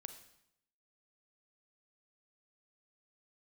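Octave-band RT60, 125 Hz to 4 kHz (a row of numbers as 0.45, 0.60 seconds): 0.85, 0.85, 0.80, 0.75, 0.75, 0.70 seconds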